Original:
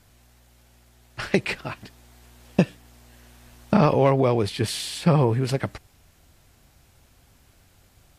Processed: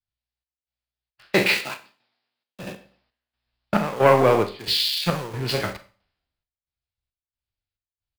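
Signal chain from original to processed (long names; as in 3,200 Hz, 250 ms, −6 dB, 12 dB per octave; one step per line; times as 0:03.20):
peak hold with a decay on every bin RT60 0.34 s
on a send: repeating echo 109 ms, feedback 42%, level −19 dB
on the sum: downsampling to 11,025 Hz
0:01.57–0:02.63: high-pass filter 130 Hz 24 dB per octave
soft clipping −12.5 dBFS, distortion −14 dB
square-wave tremolo 1.5 Hz, depth 65%, duty 65%
in parallel at −7 dB: bit reduction 5 bits
on the sum: low-shelf EQ 410 Hz −10 dB
four-comb reverb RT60 0.51 s, combs from 31 ms, DRR 9.5 dB
multiband upward and downward expander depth 100%
level −2 dB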